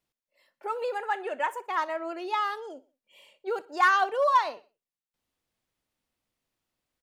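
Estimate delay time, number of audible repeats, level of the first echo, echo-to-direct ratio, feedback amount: 61 ms, 2, -21.5 dB, -20.5 dB, 45%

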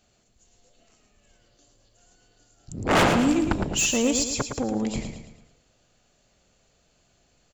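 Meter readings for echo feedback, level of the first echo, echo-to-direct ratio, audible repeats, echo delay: 46%, -7.0 dB, -6.0 dB, 5, 0.111 s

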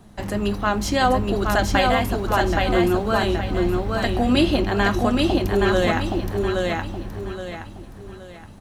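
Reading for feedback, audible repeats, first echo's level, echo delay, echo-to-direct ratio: 35%, 4, -3.0 dB, 0.821 s, -2.5 dB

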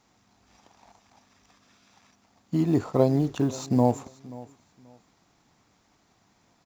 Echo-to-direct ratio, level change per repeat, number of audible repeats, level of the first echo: -20.0 dB, -12.5 dB, 2, -20.0 dB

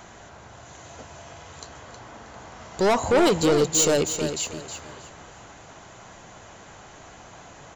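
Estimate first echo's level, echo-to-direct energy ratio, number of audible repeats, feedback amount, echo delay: -9.0 dB, -8.5 dB, 3, 27%, 0.317 s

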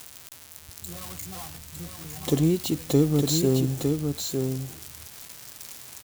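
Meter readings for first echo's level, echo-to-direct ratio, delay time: -5.0 dB, -5.0 dB, 0.907 s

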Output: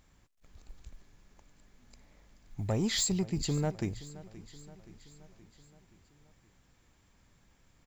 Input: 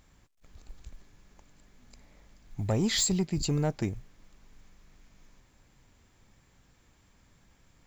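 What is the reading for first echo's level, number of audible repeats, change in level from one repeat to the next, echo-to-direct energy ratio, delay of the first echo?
-18.0 dB, 4, -4.5 dB, -16.0 dB, 0.524 s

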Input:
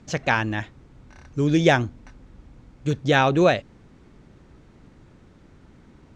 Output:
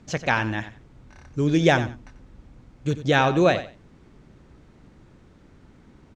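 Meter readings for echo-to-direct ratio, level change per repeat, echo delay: -13.0 dB, -14.5 dB, 91 ms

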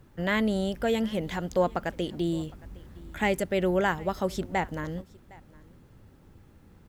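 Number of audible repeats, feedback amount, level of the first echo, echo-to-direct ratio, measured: 1, no steady repeat, -23.5 dB, -23.5 dB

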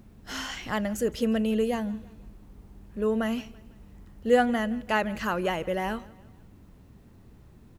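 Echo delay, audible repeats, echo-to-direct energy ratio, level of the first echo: 0.166 s, 2, -21.0 dB, -22.0 dB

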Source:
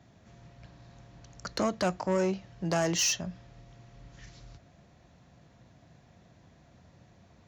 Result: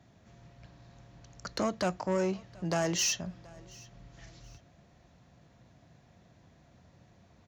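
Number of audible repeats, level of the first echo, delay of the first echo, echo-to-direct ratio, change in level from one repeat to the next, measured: 2, -24.0 dB, 0.726 s, -23.5 dB, -9.5 dB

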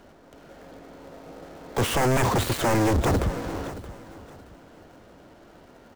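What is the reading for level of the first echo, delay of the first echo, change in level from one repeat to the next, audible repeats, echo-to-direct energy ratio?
-15.5 dB, 0.624 s, -11.0 dB, 2, -15.0 dB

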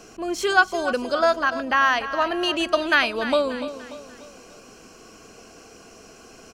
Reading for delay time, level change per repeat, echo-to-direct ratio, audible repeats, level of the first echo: 0.293 s, -7.0 dB, -11.5 dB, 4, -12.5 dB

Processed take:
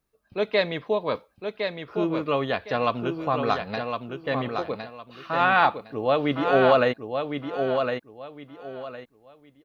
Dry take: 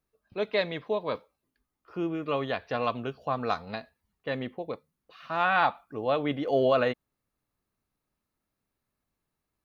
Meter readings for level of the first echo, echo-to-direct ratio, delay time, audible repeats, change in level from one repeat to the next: -6.0 dB, -5.5 dB, 1.06 s, 3, -12.0 dB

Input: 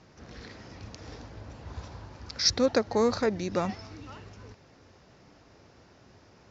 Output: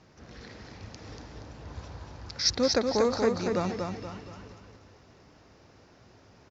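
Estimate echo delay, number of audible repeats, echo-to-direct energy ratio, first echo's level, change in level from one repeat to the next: 0.237 s, 4, -3.5 dB, -4.5 dB, -8.0 dB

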